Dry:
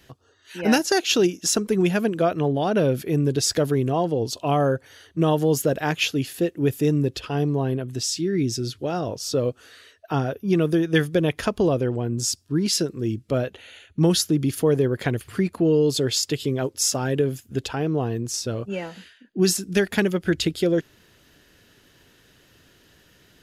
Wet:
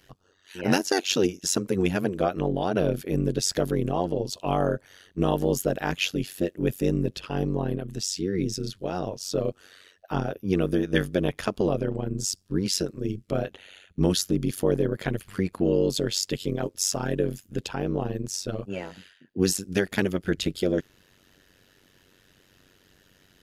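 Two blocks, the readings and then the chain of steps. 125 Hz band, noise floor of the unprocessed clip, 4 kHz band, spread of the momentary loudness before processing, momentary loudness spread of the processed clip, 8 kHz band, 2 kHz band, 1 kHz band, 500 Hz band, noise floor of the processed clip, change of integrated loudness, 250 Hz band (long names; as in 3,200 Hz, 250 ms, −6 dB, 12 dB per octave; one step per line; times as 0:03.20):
−4.5 dB, −58 dBFS, −4.0 dB, 7 LU, 7 LU, −4.0 dB, −4.0 dB, −4.0 dB, −4.0 dB, −62 dBFS, −4.0 dB, −4.0 dB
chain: amplitude modulation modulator 94 Hz, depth 85%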